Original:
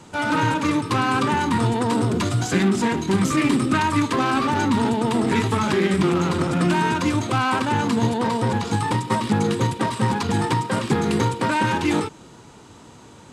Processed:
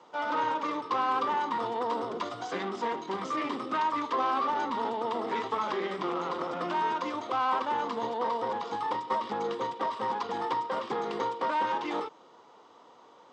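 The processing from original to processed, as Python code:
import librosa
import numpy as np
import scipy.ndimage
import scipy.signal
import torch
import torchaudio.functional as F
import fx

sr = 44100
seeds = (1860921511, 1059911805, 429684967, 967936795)

y = fx.cabinet(x, sr, low_hz=480.0, low_slope=12, high_hz=4800.0, hz=(500.0, 740.0, 1100.0, 1600.0, 2500.0, 4200.0), db=(5, 3, 6, -6, -8, -6))
y = F.gain(torch.from_numpy(y), -7.5).numpy()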